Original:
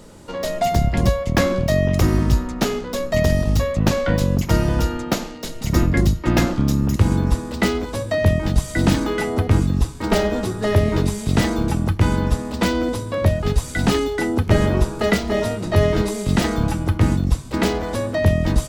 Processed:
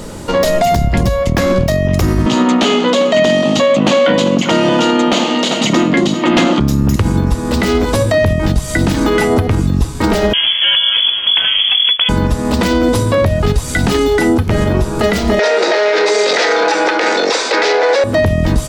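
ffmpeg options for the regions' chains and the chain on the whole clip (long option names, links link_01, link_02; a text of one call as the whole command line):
ffmpeg -i in.wav -filter_complex "[0:a]asettb=1/sr,asplit=3[link_01][link_02][link_03];[link_01]atrim=end=2.264[link_04];[link_02]atrim=start=2.26:end=6.6,asetpts=PTS-STARTPTS,afade=type=in:duration=0.004:curve=qsin,afade=type=out:start_time=4.336:duration=0.004:curve=qsin,highpass=frequency=220:width=0.5412,highpass=frequency=220:width=1.3066,equalizer=frequency=420:width_type=q:width=4:gain=-5,equalizer=frequency=1600:width_type=q:width=4:gain=-5,equalizer=frequency=3100:width_type=q:width=4:gain=8,equalizer=frequency=5300:width_type=q:width=4:gain=-9,lowpass=frequency=6900:width=0.5412,lowpass=frequency=6900:width=1.3066,aecho=1:1:394:0.126,atrim=end_sample=191394,aeval=exprs='0.531*sin(PI/2*1.78*val(0)/0.531)':channel_layout=same[link_05];[link_03]atrim=start=6.596[link_06];[link_04][link_05]acrossfade=duration=0.004:curve1=hsin:curve2=qsin[link_07];[link_07][link_06]acrossfade=duration=0.004:curve1=qsin:curve2=hsin,asettb=1/sr,asplit=3[link_08][link_09][link_10];[link_08]atrim=end=10.334[link_11];[link_09]atrim=start=10.33:end=12.09,asetpts=PTS-STARTPTS,afade=type=in:duration=0.004:curve=qsin,afade=type=out:start_time=1.756:duration=0.004:curve=qsin,highpass=frequency=71:width=0.5412,highpass=frequency=71:width=1.3066,aeval=exprs='sgn(val(0))*max(abs(val(0))-0.0168,0)':channel_layout=same,lowpass=frequency=3000:width_type=q:width=0.5098,lowpass=frequency=3000:width_type=q:width=0.6013,lowpass=frequency=3000:width_type=q:width=0.9,lowpass=frequency=3000:width_type=q:width=2.563,afreqshift=-3500[link_12];[link_10]atrim=start=12.086[link_13];[link_11][link_12]acrossfade=duration=0.004:curve1=hsin:curve2=qsin[link_14];[link_14][link_13]acrossfade=duration=0.004:curve1=qsin:curve2=hsin,asettb=1/sr,asplit=3[link_15][link_16][link_17];[link_15]atrim=end=15.394[link_18];[link_16]atrim=start=15.39:end=18.04,asetpts=PTS-STARTPTS,afade=type=in:duration=0.004:curve=qsin,afade=type=out:start_time=2.646:duration=0.004:curve=qsin,asplit=2[link_19][link_20];[link_20]highpass=frequency=720:poles=1,volume=27dB,asoftclip=type=tanh:threshold=-3dB[link_21];[link_19][link_21]amix=inputs=2:normalize=0,lowpass=frequency=4000:poles=1,volume=-6dB,highpass=frequency=440:width=0.5412,highpass=frequency=440:width=1.3066,equalizer=frequency=470:width_type=q:width=4:gain=5,equalizer=frequency=660:width_type=q:width=4:gain=-5,equalizer=frequency=1100:width_type=q:width=4:gain=-10,equalizer=frequency=3000:width_type=q:width=4:gain=-7,lowpass=frequency=5900:width=0.5412,lowpass=frequency=5900:width=1.3066[link_22];[link_17]atrim=start=18.036[link_23];[link_18][link_22]acrossfade=duration=0.004:curve1=hsin:curve2=qsin[link_24];[link_24][link_23]acrossfade=duration=0.004:curve1=qsin:curve2=hsin,acompressor=threshold=-22dB:ratio=6,alimiter=level_in=18.5dB:limit=-1dB:release=50:level=0:latency=1,volume=-3dB" out.wav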